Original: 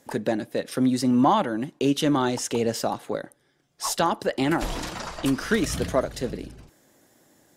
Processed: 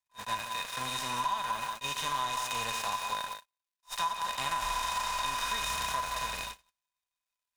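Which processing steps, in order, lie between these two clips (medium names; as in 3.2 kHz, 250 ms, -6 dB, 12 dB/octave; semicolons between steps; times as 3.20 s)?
spectral levelling over time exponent 0.4; dynamic bell 1.2 kHz, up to +4 dB, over -29 dBFS, Q 1; crossover distortion -28.5 dBFS; small resonant body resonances 1/2.5/3.7 kHz, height 15 dB, ringing for 85 ms; harmonic-percussive split percussive -14 dB; crackle 230 per s -30 dBFS; amplifier tone stack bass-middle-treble 10-0-10; thinning echo 180 ms, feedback 31%, high-pass 160 Hz, level -7.5 dB; gate -36 dBFS, range -43 dB; compression 6:1, threshold -27 dBFS, peak gain reduction 10.5 dB; attacks held to a fixed rise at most 410 dB/s; trim -1.5 dB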